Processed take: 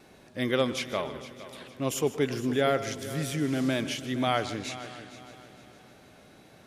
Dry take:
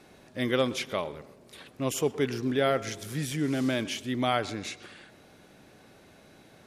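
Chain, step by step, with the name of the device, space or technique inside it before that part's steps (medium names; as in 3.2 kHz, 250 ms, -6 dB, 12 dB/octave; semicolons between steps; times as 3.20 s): multi-head tape echo (multi-head delay 154 ms, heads first and third, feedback 55%, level -16 dB; wow and flutter 23 cents)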